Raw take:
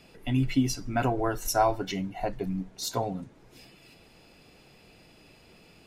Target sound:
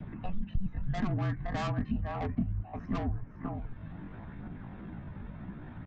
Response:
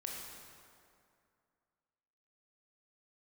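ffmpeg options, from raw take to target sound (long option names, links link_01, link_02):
-filter_complex "[0:a]adynamicequalizer=threshold=0.00794:dfrequency=1000:dqfactor=1.2:tfrequency=1000:tqfactor=1.2:attack=5:release=100:ratio=0.375:range=2:mode=cutabove:tftype=bell,aecho=1:1:509:0.251,aphaser=in_gain=1:out_gain=1:delay=3.8:decay=0.32:speed=0.67:type=triangular,acrossover=split=390[link_01][link_02];[link_02]crystalizer=i=10:c=0[link_03];[link_01][link_03]amix=inputs=2:normalize=0,asetrate=68011,aresample=44100,atempo=0.64842,highpass=frequency=380:width_type=q:width=0.5412,highpass=frequency=380:width_type=q:width=1.307,lowpass=frequency=2100:width_type=q:width=0.5176,lowpass=frequency=2100:width_type=q:width=0.7071,lowpass=frequency=2100:width_type=q:width=1.932,afreqshift=-390,aresample=16000,asoftclip=type=tanh:threshold=-28dB,aresample=44100,lowshelf=frequency=300:width_type=q:width=1.5:gain=12.5,acompressor=threshold=-50dB:ratio=2,volume=9dB"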